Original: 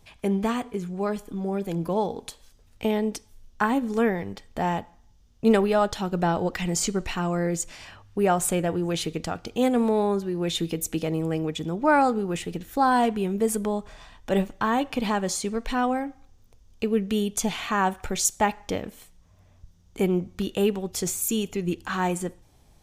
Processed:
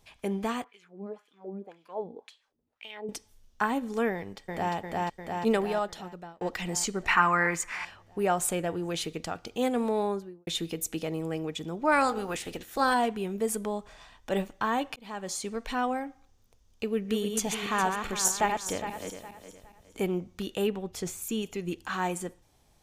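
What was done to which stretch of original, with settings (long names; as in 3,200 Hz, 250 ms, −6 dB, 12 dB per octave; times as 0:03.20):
0:00.64–0:03.09: auto-filter band-pass sine 1.9 Hz 220–3,200 Hz
0:04.13–0:04.74: delay throw 350 ms, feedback 70%, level −0.5 dB
0:05.47–0:06.41: fade out
0:07.08–0:07.85: flat-topped bell 1,500 Hz +16 dB
0:10.05–0:10.47: fade out and dull
0:11.91–0:12.93: ceiling on every frequency bin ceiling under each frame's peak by 14 dB
0:14.96–0:15.67: fade in equal-power
0:16.84–0:20.14: feedback delay that plays each chunk backwards 206 ms, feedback 55%, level −5.5 dB
0:20.67–0:21.43: bass and treble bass +3 dB, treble −8 dB
whole clip: low-shelf EQ 300 Hz −6.5 dB; level −3 dB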